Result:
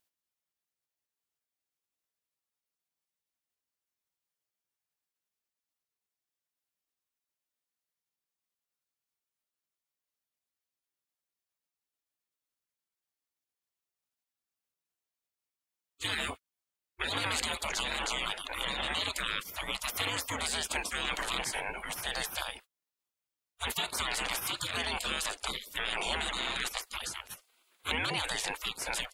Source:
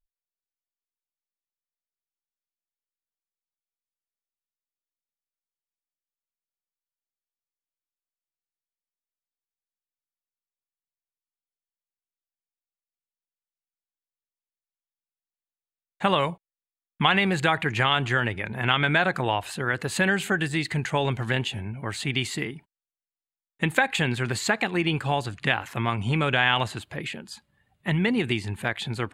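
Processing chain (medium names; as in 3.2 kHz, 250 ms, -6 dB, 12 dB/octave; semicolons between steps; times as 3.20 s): spectral gate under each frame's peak -25 dB weak; in parallel at -0.5 dB: compressor with a negative ratio -48 dBFS; on the sum: trim +6.5 dB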